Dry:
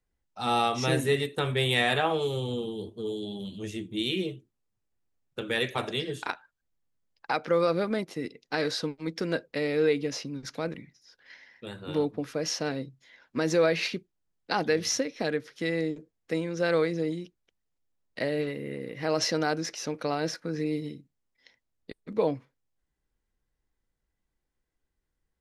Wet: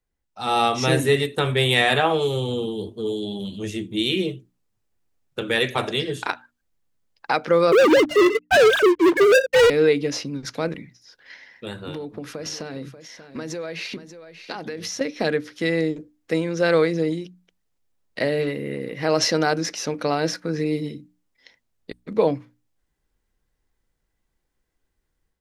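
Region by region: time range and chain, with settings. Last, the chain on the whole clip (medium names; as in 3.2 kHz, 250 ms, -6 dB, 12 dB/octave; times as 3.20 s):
7.72–9.70 s: formants replaced by sine waves + waveshaping leveller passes 5
11.82–15.01 s: compression 12:1, threshold -34 dBFS + delay 586 ms -12 dB
whole clip: hum notches 60/120/180/240/300 Hz; level rider gain up to 7 dB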